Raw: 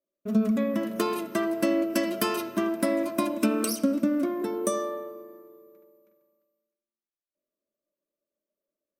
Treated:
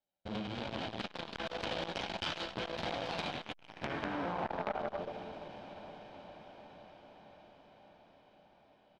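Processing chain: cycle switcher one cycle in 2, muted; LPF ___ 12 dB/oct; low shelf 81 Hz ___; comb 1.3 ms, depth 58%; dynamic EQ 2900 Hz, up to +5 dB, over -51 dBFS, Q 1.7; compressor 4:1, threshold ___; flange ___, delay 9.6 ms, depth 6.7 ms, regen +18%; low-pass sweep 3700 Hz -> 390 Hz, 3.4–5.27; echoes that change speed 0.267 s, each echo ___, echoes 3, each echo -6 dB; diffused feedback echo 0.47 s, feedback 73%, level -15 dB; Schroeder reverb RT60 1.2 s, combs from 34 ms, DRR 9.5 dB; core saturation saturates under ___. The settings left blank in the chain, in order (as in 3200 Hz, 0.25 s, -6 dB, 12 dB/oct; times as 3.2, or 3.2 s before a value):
9100 Hz, +5.5 dB, -30 dBFS, 0.97 Hz, +2 st, 2000 Hz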